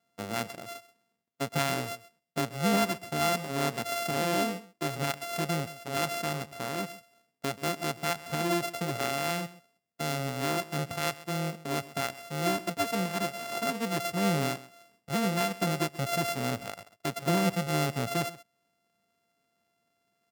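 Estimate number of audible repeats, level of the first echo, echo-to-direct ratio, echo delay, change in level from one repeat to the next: 1, -18.0 dB, -18.0 dB, 0.131 s, no steady repeat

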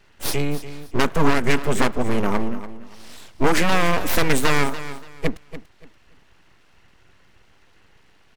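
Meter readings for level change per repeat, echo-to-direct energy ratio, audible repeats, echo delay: -12.0 dB, -13.0 dB, 2, 0.288 s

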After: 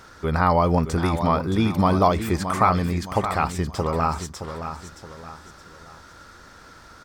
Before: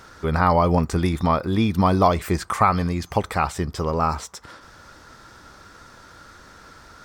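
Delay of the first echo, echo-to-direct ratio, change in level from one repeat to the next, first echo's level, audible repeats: 0.621 s, -9.0 dB, -8.0 dB, -9.5 dB, 3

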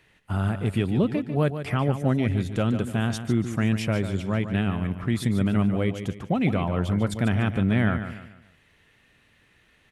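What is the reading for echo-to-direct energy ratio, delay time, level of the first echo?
-9.5 dB, 0.146 s, -10.0 dB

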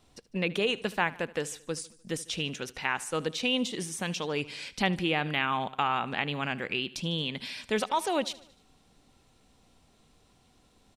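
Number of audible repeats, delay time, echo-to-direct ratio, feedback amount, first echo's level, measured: 3, 75 ms, -18.5 dB, 55%, -20.0 dB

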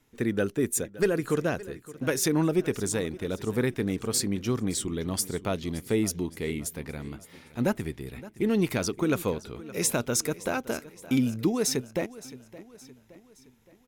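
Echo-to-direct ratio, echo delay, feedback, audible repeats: -17.0 dB, 0.568 s, 49%, 3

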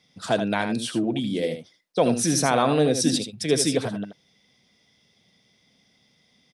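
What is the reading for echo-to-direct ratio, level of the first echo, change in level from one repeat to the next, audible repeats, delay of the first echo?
-8.5 dB, -8.5 dB, no steady repeat, 1, 79 ms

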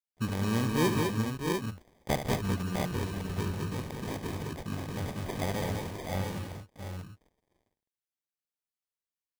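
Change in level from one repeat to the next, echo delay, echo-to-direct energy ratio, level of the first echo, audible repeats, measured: no steady repeat, 72 ms, 0.0 dB, -9.5 dB, 5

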